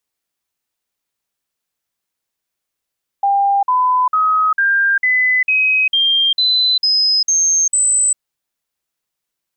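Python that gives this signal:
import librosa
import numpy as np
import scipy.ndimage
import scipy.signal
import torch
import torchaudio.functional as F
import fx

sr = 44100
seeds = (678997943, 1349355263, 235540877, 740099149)

y = fx.stepped_sweep(sr, from_hz=798.0, direction='up', per_octave=3, tones=11, dwell_s=0.4, gap_s=0.05, level_db=-11.0)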